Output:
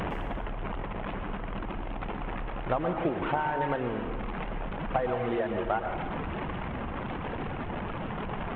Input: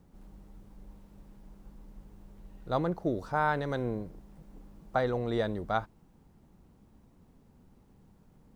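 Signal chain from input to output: one-bit delta coder 16 kbps, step -33 dBFS; peaking EQ 890 Hz +5.5 dB 1.5 oct; compression 10:1, threshold -30 dBFS, peak gain reduction 10 dB; reverb removal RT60 1.9 s; plate-style reverb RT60 1.6 s, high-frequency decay 0.7×, pre-delay 100 ms, DRR 4 dB; trim +6 dB

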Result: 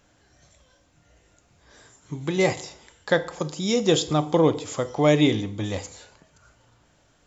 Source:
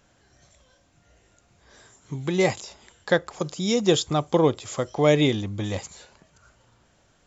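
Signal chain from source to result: FDN reverb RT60 0.66 s, low-frequency decay 0.9×, high-frequency decay 0.85×, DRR 10.5 dB

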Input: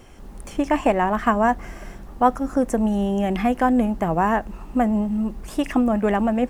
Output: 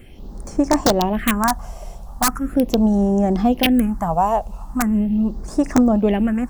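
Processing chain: integer overflow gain 9.5 dB; phase shifter stages 4, 0.4 Hz, lowest notch 280–3000 Hz; trim +4 dB

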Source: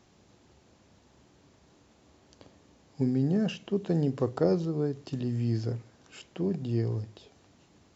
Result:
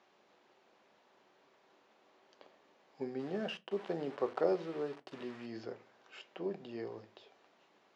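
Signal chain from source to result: 3.19–5.46 s: small samples zeroed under -41.5 dBFS; band-pass 530–3100 Hz; reverberation RT60 0.25 s, pre-delay 5 ms, DRR 12 dB; trim -1 dB

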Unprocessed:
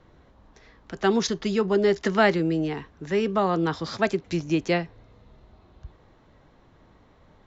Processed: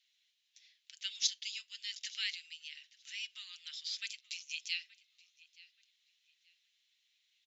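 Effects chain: steep high-pass 2.6 kHz 36 dB/octave; comb 6.5 ms, depth 36%; filtered feedback delay 876 ms, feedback 30%, low-pass 4.7 kHz, level -20 dB; trim -2 dB

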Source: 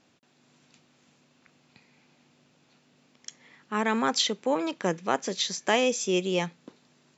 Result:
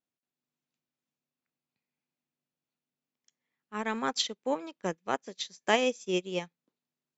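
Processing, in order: upward expansion 2.5:1, over -41 dBFS

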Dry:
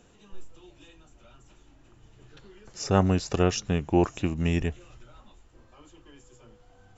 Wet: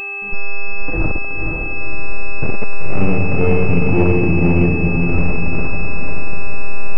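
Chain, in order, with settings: recorder AGC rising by 28 dB/s; bass shelf 230 Hz +5 dB; gate with hold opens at -37 dBFS; in parallel at +3 dB: peak limiter -14 dBFS, peak gain reduction 9 dB; on the sum: waveshaping leveller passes 1; feedback comb 450 Hz, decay 0.19 s, harmonics all, mix 40%; Schroeder reverb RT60 1.6 s, combs from 31 ms, DRR -1.5 dB; hard clipper -9 dBFS, distortion -6 dB; distance through air 370 m; echo that smears into a reverb 510 ms, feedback 41%, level -3.5 dB; mains buzz 400 Hz, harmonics 7, -32 dBFS -1 dB/octave; class-D stage that switches slowly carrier 2.6 kHz; trim -1 dB

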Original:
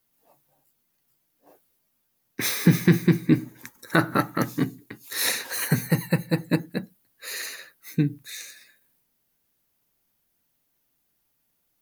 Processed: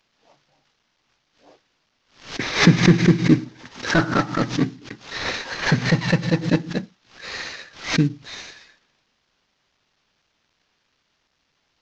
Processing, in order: CVSD coder 32 kbps; swell ahead of each attack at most 130 dB/s; trim +4 dB

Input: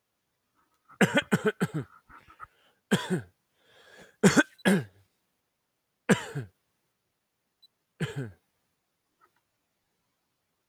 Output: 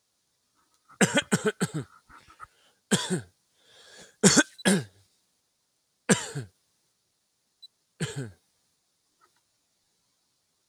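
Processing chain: high-order bell 6.1 kHz +11 dB

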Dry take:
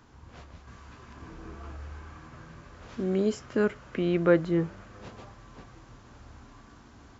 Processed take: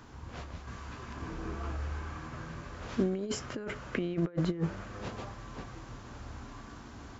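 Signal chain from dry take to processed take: compressor with a negative ratio -30 dBFS, ratio -0.5

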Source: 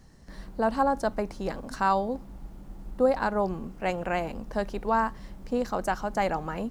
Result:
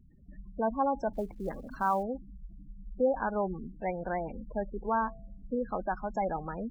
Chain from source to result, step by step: spectral gate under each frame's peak -15 dB strong; 1.13–2.03 s: short-mantissa float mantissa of 4-bit; 4.86–5.59 s: de-hum 95.34 Hz, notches 8; trim -4 dB

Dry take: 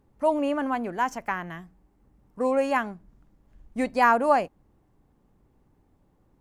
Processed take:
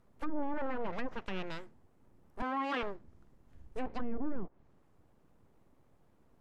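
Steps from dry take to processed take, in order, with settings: full-wave rectifier; 2.42–2.83 s: high-pass 250 Hz 24 dB/octave; low-pass that closes with the level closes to 390 Hz, closed at -18.5 dBFS; peak limiter -24.5 dBFS, peak gain reduction 11 dB; trim -1 dB

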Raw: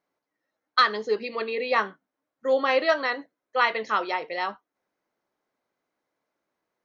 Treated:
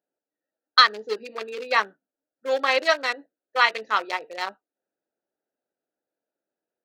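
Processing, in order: local Wiener filter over 41 samples; high-pass 730 Hz 6 dB/octave; treble shelf 3.2 kHz +9.5 dB; trim +3.5 dB

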